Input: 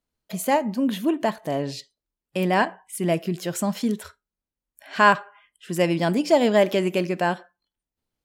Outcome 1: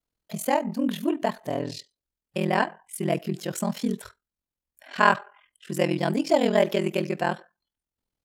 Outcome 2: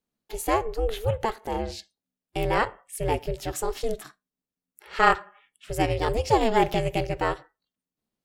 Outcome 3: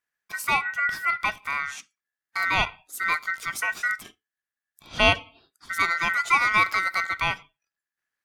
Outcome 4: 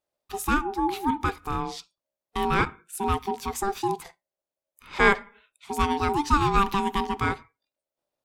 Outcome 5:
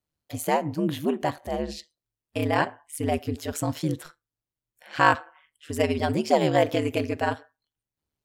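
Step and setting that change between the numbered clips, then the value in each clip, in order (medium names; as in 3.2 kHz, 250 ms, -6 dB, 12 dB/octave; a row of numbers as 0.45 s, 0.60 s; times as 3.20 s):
ring modulator, frequency: 21 Hz, 220 Hz, 1.7 kHz, 590 Hz, 76 Hz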